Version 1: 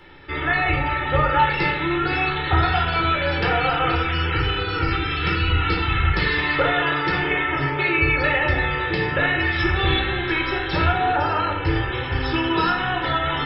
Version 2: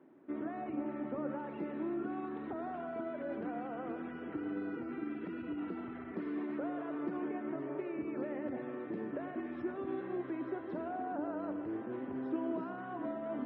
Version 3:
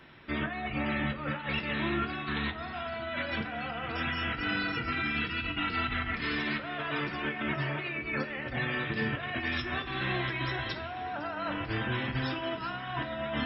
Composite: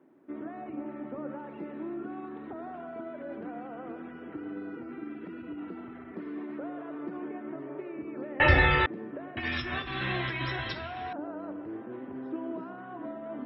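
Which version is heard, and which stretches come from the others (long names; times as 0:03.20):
2
0:08.40–0:08.86: punch in from 1
0:09.37–0:11.13: punch in from 3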